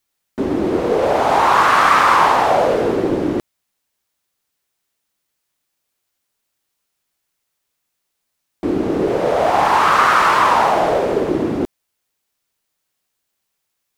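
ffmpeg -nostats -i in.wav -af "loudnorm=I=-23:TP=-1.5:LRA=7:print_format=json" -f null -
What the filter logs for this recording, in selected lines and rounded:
"input_i" : "-15.5",
"input_tp" : "-1.0",
"input_lra" : "12.8",
"input_thresh" : "-25.8",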